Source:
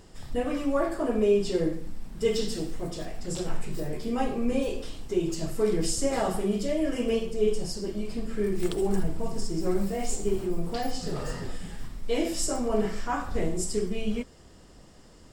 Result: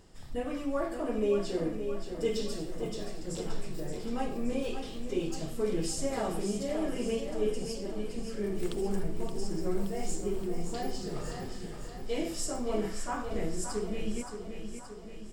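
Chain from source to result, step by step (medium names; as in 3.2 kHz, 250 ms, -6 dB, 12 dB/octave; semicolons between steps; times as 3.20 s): 4.64–5.28 s: peaking EQ 3.1 kHz +5 dB 1.5 oct; on a send: feedback delay 573 ms, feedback 58%, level -8 dB; on the sum: trim -6 dB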